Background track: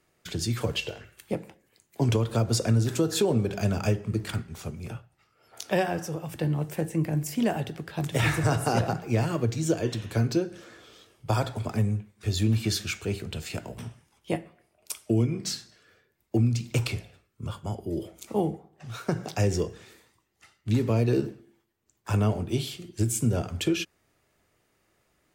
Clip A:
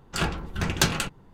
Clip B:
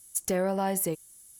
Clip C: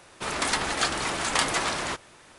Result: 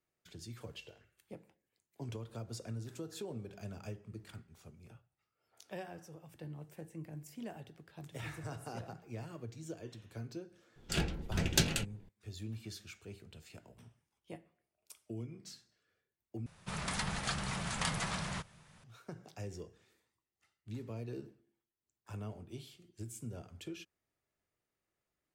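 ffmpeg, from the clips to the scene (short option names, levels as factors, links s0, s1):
-filter_complex "[0:a]volume=0.106[s0];[1:a]equalizer=f=1100:t=o:w=0.84:g=-14[s1];[3:a]lowshelf=f=230:t=q:w=3:g=9[s2];[s0]asplit=2[s3][s4];[s3]atrim=end=16.464[s5];[s2]atrim=end=2.38,asetpts=PTS-STARTPTS,volume=0.266[s6];[s4]atrim=start=18.836[s7];[s1]atrim=end=1.33,asetpts=PTS-STARTPTS,volume=0.531,afade=t=in:d=0.004:c=hsin,afade=t=out:st=1.326:d=0.004:c=hsin,adelay=10760[s8];[s5][s6]acrossfade=d=0.004:c1=hsin:c2=hsin[s9];[s9][s7]acrossfade=d=0.004:c1=hsin:c2=hsin[s10];[s10][s8]amix=inputs=2:normalize=0"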